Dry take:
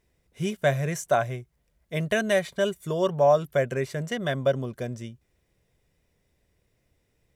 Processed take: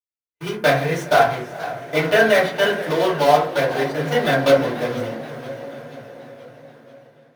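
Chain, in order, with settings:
one scale factor per block 3 bits
bass and treble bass −13 dB, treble −8 dB
notch filter 7,500 Hz, Q 5.4
feedback delay network reverb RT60 0.51 s, low-frequency decay 1.55×, high-frequency decay 0.3×, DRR −6.5 dB
noise gate −40 dBFS, range −41 dB
on a send: feedback delay with all-pass diffusion 464 ms, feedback 56%, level −16 dB
on the sum: flanger 1 Hz, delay 9 ms, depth 8.3 ms, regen −59%
automatic gain control gain up to 10.5 dB
dynamic equaliser 3,700 Hz, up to +6 dB, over −41 dBFS, Q 1.5
feedback echo with a swinging delay time 482 ms, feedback 56%, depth 162 cents, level −17 dB
level −1 dB

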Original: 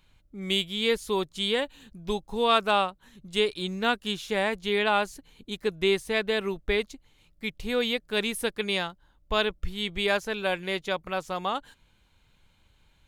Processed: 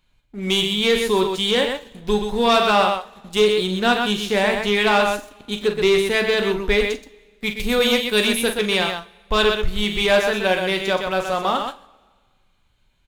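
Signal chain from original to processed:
0:07.45–0:08.26: high-shelf EQ 9,000 Hz → 4,700 Hz +10.5 dB
multi-tap delay 43/125 ms −9.5/−6.5 dB
leveller curve on the samples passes 2
coupled-rooms reverb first 0.27 s, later 1.6 s, from −21 dB, DRR 8 dB

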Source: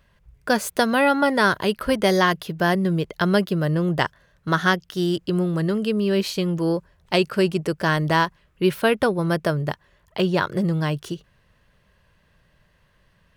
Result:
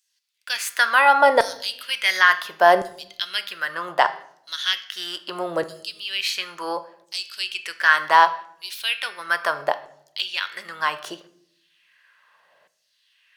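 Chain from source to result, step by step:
high-shelf EQ 6,200 Hz −4.5 dB
hum removal 200.4 Hz, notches 34
in parallel at +0.5 dB: brickwall limiter −13 dBFS, peak gain reduction 9 dB
on the sum: auto-filter high-pass saw down 0.71 Hz 530–7,100 Hz
on a send at −12 dB: convolution reverb RT60 0.70 s, pre-delay 6 ms
on the sum: level −2.5 dB

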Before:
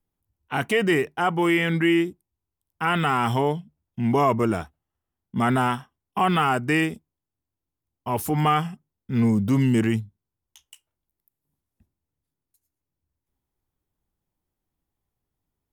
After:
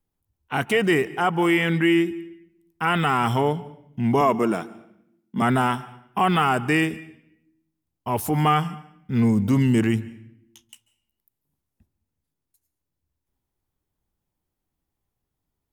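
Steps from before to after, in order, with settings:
0:04.21–0:05.42: high-pass filter 160 Hz 24 dB per octave
on a send: convolution reverb RT60 0.75 s, pre-delay 135 ms, DRR 18.5 dB
on the sum: level +1 dB

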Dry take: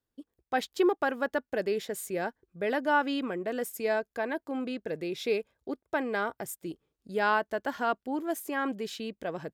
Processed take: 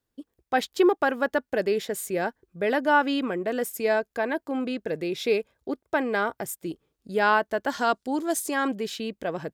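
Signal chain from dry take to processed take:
0:07.70–0:08.68: flat-topped bell 6,000 Hz +9 dB
level +5 dB

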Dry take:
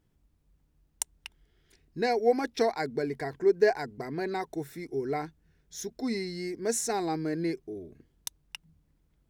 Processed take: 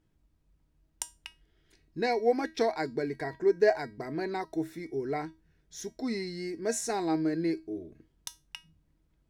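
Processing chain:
high-shelf EQ 9,600 Hz −8.5 dB
tuned comb filter 320 Hz, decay 0.25 s, harmonics all, mix 70%
level +8 dB

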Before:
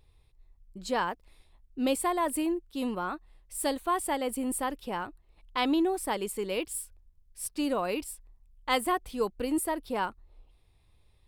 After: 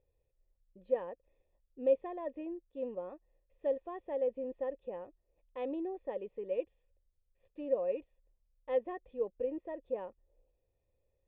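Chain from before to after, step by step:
formant resonators in series e
flat-topped bell 1,800 Hz −12 dB 1 octave
level +3.5 dB

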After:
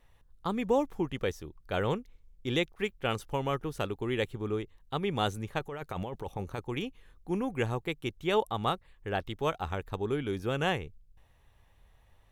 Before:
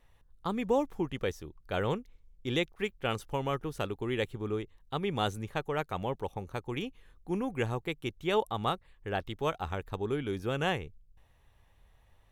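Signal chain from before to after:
0:05.59–0:06.65: compressor whose output falls as the input rises −37 dBFS, ratio −1
level +1 dB

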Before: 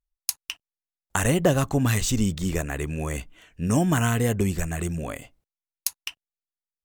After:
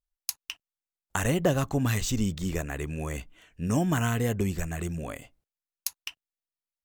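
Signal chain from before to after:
dynamic equaliser 9,200 Hz, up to −6 dB, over −49 dBFS, Q 3.2
level −4 dB

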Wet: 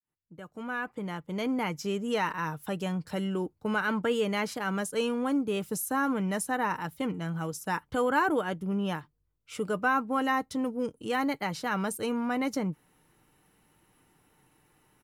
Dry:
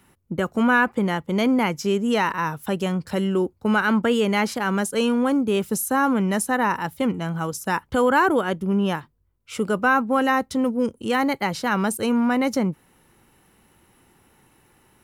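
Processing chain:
fade in at the beginning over 1.86 s
comb filter 6.6 ms, depth 34%
level −8 dB

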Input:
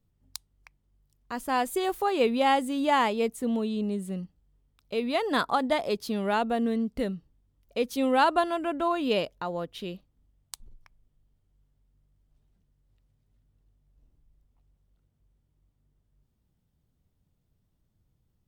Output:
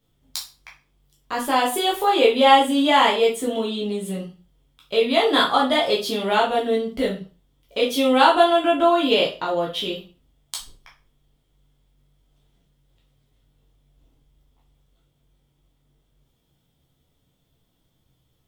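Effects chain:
parametric band 3,300 Hz +11.5 dB 0.24 octaves
in parallel at 0 dB: downward compressor, threshold −33 dBFS, peak gain reduction 15 dB
on the sum: low-shelf EQ 180 Hz −9.5 dB
convolution reverb RT60 0.35 s, pre-delay 5 ms, DRR −4.5 dB

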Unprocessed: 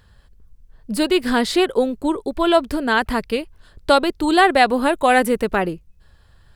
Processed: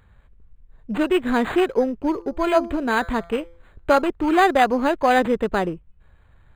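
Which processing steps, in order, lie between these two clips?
0:01.95–0:04.02: hum removal 169.9 Hz, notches 14
linearly interpolated sample-rate reduction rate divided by 8×
level −1.5 dB

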